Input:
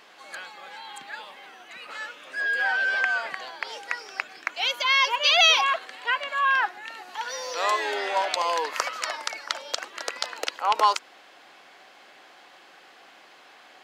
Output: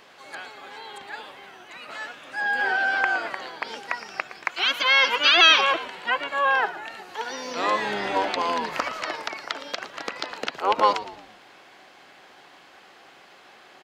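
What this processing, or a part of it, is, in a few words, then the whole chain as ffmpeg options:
octave pedal: -filter_complex "[0:a]acrossover=split=4800[s0][s1];[s1]acompressor=threshold=0.00501:ratio=4:attack=1:release=60[s2];[s0][s2]amix=inputs=2:normalize=0,asettb=1/sr,asplit=3[s3][s4][s5];[s3]atrim=end=4.454[s6];[s4]atrim=start=4.45:end=5.72,asetpts=PTS-STARTPTS,afade=t=in:d=0.004:c=qsin,afade=t=out:st=1.266:d=0.004:c=qsin,tiltshelf=f=1200:g=-4.5[s7];[s5]atrim=start=5.716[s8];[s6][s7]acrossfade=d=0.004:c1=hsin:c2=qsin[s9];[s9][s8]acrossfade=d=0.004:c1=qsin:c2=hsin,asplit=2[s10][s11];[s11]asetrate=22050,aresample=44100,atempo=2,volume=0.501[s12];[s10][s12]amix=inputs=2:normalize=0,asplit=5[s13][s14][s15][s16][s17];[s14]adelay=114,afreqshift=-77,volume=0.188[s18];[s15]adelay=228,afreqshift=-154,volume=0.0776[s19];[s16]adelay=342,afreqshift=-231,volume=0.0316[s20];[s17]adelay=456,afreqshift=-308,volume=0.013[s21];[s13][s18][s19][s20][s21]amix=inputs=5:normalize=0"

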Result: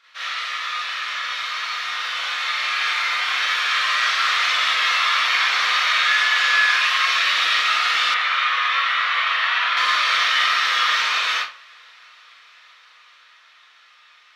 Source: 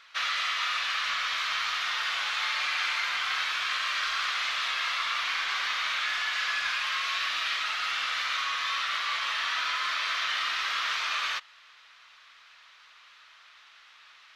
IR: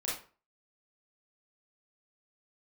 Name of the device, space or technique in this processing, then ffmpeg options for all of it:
far laptop microphone: -filter_complex "[0:a]asettb=1/sr,asplit=3[s0][s1][s2];[s0]atrim=end=6.224[s3];[s1]atrim=start=6.22:end=7.24,asetpts=PTS-STARTPTS,afade=t=in:d=0.004:c=qsin,afade=t=out:st=1.016:d=0.004:c=qsin,highpass=190[s4];[s2]atrim=start=7.236[s5];[s3][s4]acrossfade=d=0.004:c1=hsin:c2=qsin[s6];[s6][s5]acrossfade=d=0.004:c1=qsin:c2=hsin[s7];[1:a]atrim=start_sample=2205[s8];[s7][s8]afir=irnorm=-1:irlink=0,highpass=f=120:p=1,dynaudnorm=f=490:g=13:m=2.99,asettb=1/sr,asplit=3[s9][s10][s11];[s9]atrim=end=8.144[s12];[s10]atrim=start=8.14:end=9.77,asetpts=PTS-STARTPTS,afade=t=in:d=0.004:c=qsin,afade=t=out:st=1.626:d=0.004:c=qsin,acrossover=split=490 3600:gain=0.224 1 0.178[s13][s14][s15];[s13][s14][s15]amix=inputs=3:normalize=0[s16];[s11]atrim=start=9.766[s17];[s12][s16]acrossfade=d=0.004:c1=hsin:c2=qsin[s18];[s18][s17]acrossfade=d=0.004:c1=qsin:c2=hsin,volume=0.841"

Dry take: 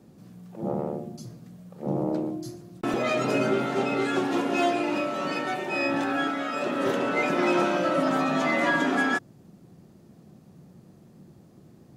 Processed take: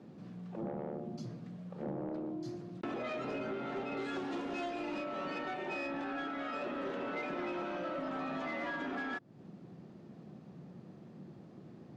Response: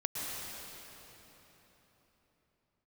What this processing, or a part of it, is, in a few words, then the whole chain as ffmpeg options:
AM radio: -filter_complex "[0:a]asettb=1/sr,asplit=3[s0][s1][s2];[s0]atrim=end=3.974[s3];[s1]atrim=start=3.97:end=5.04,asetpts=PTS-STARTPTS,afade=t=in:d=0.004:c=qsin,afade=t=out:st=1.066:d=0.004:c=qsin,bass=f=250:g=2,treble=f=4000:g=9[s4];[s2]atrim=start=5.036[s5];[s3][s4]acrossfade=d=0.004:c1=hsin:c2=qsin[s6];[s6][s5]acrossfade=d=0.004:c1=qsin:c2=hsin,highpass=130,lowpass=3600,acompressor=threshold=0.0158:ratio=6,asoftclip=type=tanh:threshold=0.0251,volume=1.12"

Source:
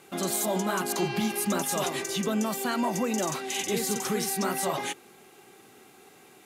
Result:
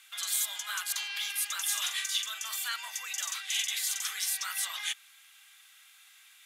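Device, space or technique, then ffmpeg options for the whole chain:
headphones lying on a table: -filter_complex "[0:a]highpass=f=1500:w=0.5412,highpass=f=1500:w=1.3066,equalizer=f=3400:t=o:w=0.23:g=8,asettb=1/sr,asplit=3[s0][s1][s2];[s0]atrim=end=1.624[s3];[s1]atrim=start=1.62:end=2.69,asetpts=PTS-STARTPTS,afade=t=in:d=0.004:c=qsin,afade=t=out:st=1.066:d=0.004:c=qsin,asplit=2[s4][s5];[s5]adelay=44,volume=0.422[s6];[s4][s6]amix=inputs=2:normalize=0,atrim=end_sample=47187[s7];[s2]atrim=start=2.686[s8];[s3][s7]acrossfade=d=0.004:c1=hsin:c2=qsin[s9];[s9][s8]acrossfade=d=0.004:c1=qsin:c2=hsin"

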